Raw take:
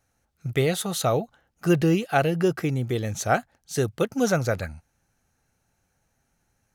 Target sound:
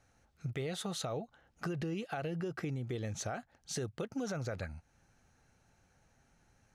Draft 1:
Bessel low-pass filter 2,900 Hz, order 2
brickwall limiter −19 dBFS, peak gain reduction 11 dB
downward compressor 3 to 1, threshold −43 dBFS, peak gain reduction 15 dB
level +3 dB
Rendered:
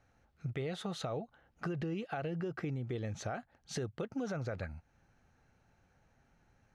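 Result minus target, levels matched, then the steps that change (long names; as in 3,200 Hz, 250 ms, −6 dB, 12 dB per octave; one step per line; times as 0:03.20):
8,000 Hz band −6.5 dB
change: Bessel low-pass filter 6,200 Hz, order 2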